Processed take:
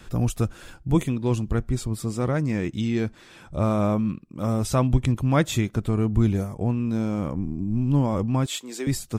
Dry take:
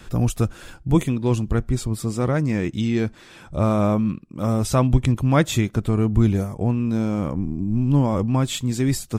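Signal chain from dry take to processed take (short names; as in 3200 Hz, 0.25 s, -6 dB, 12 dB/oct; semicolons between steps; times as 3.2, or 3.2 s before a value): 8.46–8.87 HPF 330 Hz 24 dB/oct; gain -3 dB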